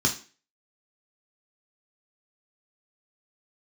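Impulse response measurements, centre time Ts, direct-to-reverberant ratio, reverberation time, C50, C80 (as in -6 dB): 15 ms, 0.5 dB, 0.35 s, 11.0 dB, 17.0 dB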